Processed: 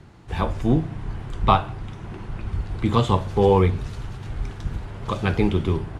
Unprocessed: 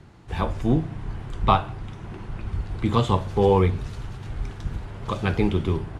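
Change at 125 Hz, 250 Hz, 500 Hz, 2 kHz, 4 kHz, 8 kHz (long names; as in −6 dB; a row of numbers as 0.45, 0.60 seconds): +1.5 dB, +1.5 dB, +1.5 dB, +1.5 dB, +1.5 dB, can't be measured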